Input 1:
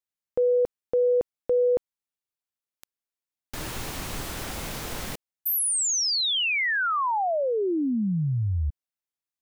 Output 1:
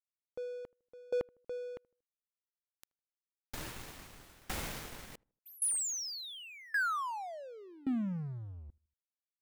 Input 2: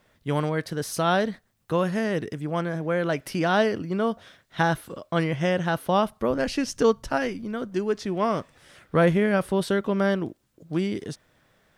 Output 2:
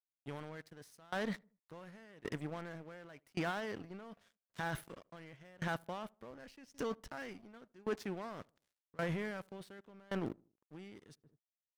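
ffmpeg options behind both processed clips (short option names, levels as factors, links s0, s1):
-filter_complex "[0:a]adynamicequalizer=threshold=0.00794:dfrequency=1900:dqfactor=1.3:tfrequency=1900:tqfactor=1.3:attack=5:release=100:ratio=0.375:range=2.5:mode=boostabove:tftype=bell,alimiter=limit=0.126:level=0:latency=1:release=21,areverse,acompressor=threshold=0.02:ratio=5:attack=2.6:release=438:knee=1:detection=rms,areverse,aeval=exprs='sgn(val(0))*max(abs(val(0))-0.00376,0)':c=same,asplit=2[s0][s1];[s1]adelay=78,lowpass=f=1100:p=1,volume=0.0668,asplit=2[s2][s3];[s3]adelay=78,lowpass=f=1100:p=1,volume=0.52,asplit=2[s4][s5];[s5]adelay=78,lowpass=f=1100:p=1,volume=0.52[s6];[s0][s2][s4][s6]amix=inputs=4:normalize=0,aeval=exprs='val(0)*pow(10,-26*if(lt(mod(0.89*n/s,1),2*abs(0.89)/1000),1-mod(0.89*n/s,1)/(2*abs(0.89)/1000),(mod(0.89*n/s,1)-2*abs(0.89)/1000)/(1-2*abs(0.89)/1000))/20)':c=same,volume=2"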